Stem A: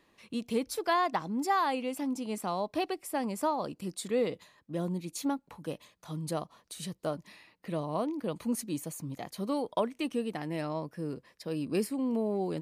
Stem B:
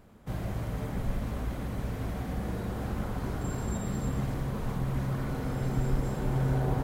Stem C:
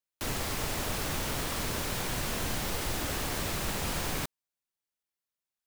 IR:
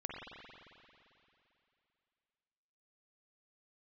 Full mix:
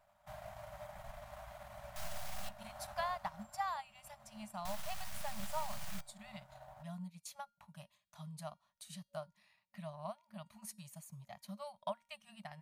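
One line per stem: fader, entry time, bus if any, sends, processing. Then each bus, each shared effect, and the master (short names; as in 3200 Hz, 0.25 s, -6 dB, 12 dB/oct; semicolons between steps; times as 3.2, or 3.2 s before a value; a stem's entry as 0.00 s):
-4.0 dB, 2.10 s, no send, dry
3.2 s -3 dB -> 3.71 s -14.5 dB, 0.00 s, no send, resonant low shelf 390 Hz -12 dB, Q 3; short-mantissa float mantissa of 4-bit
-4.5 dB, 1.75 s, muted 2.49–4.65, no send, full-wave rectifier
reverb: off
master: resonator 470 Hz, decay 0.41 s, mix 60%; FFT band-reject 220–560 Hz; transient shaper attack +3 dB, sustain -7 dB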